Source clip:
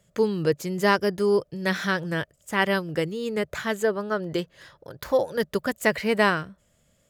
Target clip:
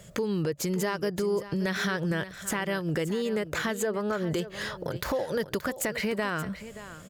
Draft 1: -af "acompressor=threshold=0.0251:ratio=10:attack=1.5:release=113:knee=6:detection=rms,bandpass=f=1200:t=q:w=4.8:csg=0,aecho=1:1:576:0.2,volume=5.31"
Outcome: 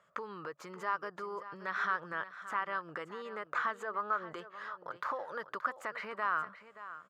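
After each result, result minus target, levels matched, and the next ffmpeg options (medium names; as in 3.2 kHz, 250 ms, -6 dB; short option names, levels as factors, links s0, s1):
1 kHz band +9.5 dB; compression: peak gain reduction -6.5 dB
-af "acompressor=threshold=0.0251:ratio=10:attack=1.5:release=113:knee=6:detection=rms,aecho=1:1:576:0.2,volume=5.31"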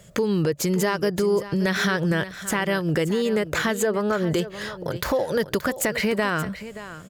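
compression: peak gain reduction -6.5 dB
-af "acompressor=threshold=0.0112:ratio=10:attack=1.5:release=113:knee=6:detection=rms,aecho=1:1:576:0.2,volume=5.31"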